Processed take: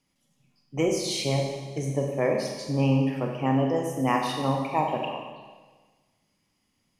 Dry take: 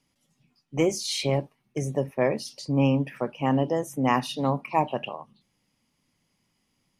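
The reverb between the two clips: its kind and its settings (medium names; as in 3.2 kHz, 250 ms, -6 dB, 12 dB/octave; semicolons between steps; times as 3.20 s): Schroeder reverb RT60 1.4 s, combs from 30 ms, DRR 1.5 dB; trim -2.5 dB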